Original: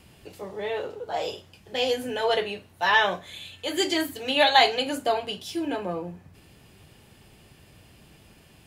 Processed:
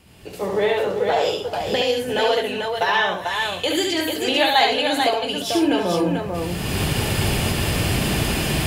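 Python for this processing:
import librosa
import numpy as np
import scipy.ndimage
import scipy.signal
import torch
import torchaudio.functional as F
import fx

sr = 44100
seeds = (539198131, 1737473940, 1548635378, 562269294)

y = fx.recorder_agc(x, sr, target_db=-13.0, rise_db_per_s=26.0, max_gain_db=30)
y = fx.echo_multitap(y, sr, ms=(70, 351, 442), db=(-4.0, -17.0, -4.5))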